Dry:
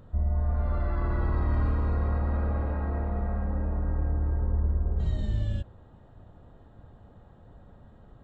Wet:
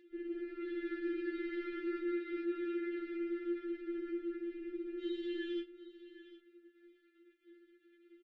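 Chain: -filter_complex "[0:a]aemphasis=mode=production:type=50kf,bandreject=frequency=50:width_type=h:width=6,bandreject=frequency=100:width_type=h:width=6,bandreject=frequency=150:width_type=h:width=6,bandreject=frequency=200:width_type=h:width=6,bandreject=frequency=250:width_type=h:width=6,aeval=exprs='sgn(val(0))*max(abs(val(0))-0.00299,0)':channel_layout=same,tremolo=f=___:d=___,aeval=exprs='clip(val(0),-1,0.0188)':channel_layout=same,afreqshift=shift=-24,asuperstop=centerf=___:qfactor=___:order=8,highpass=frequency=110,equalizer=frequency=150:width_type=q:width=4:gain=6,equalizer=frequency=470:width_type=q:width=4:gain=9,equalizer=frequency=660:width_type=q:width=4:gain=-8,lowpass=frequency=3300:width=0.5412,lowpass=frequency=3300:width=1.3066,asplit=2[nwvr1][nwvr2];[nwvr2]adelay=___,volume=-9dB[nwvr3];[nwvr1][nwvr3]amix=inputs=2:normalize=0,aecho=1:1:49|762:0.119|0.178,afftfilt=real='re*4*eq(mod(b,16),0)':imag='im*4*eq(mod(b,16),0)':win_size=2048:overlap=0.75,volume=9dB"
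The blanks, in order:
200, 0.919, 870, 0.77, 26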